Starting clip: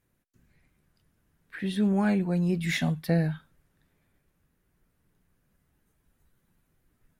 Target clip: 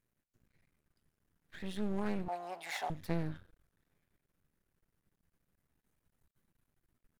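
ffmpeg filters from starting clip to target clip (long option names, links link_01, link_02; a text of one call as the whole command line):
ffmpeg -i in.wav -filter_complex "[0:a]asplit=2[link_01][link_02];[link_02]asplit=3[link_03][link_04][link_05];[link_03]adelay=117,afreqshift=-66,volume=-22dB[link_06];[link_04]adelay=234,afreqshift=-132,volume=-30.9dB[link_07];[link_05]adelay=351,afreqshift=-198,volume=-39.7dB[link_08];[link_06][link_07][link_08]amix=inputs=3:normalize=0[link_09];[link_01][link_09]amix=inputs=2:normalize=0,aeval=exprs='0.251*(cos(1*acos(clip(val(0)/0.251,-1,1)))-cos(1*PI/2))+0.0224*(cos(4*acos(clip(val(0)/0.251,-1,1)))-cos(4*PI/2))':channel_layout=same,aeval=exprs='max(val(0),0)':channel_layout=same,asettb=1/sr,asplit=3[link_10][link_11][link_12];[link_10]atrim=end=2.284[link_13];[link_11]atrim=start=2.28:end=2.9,asetpts=PTS-STARTPTS,afade=type=in:duration=0.004:curve=qsin,afade=type=out:start_time=0.616:duration=0.004:curve=qsin,highpass=frequency=760:width_type=q:width=5.8[link_14];[link_12]atrim=start=2.896[link_15];[link_13][link_14]acrossfade=duration=0.004:curve1=hsin:curve2=qsin[link_16];[link_16][link_15]acrossfade=duration=0.004:curve1=qsin:curve2=hsin,volume=-5.5dB" out.wav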